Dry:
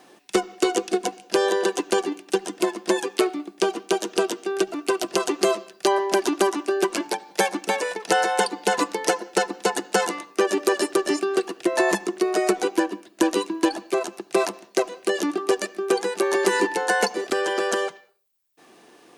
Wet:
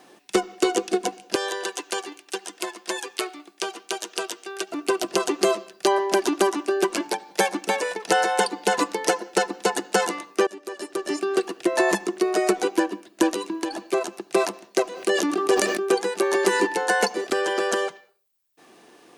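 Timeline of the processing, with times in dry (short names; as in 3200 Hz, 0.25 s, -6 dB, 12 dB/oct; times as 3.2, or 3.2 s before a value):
1.35–4.72 HPF 1300 Hz 6 dB/oct
10.47–11.32 fade in quadratic, from -17 dB
13.29–13.84 compressor, threshold -23 dBFS
14.84–15.95 sustainer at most 39 dB/s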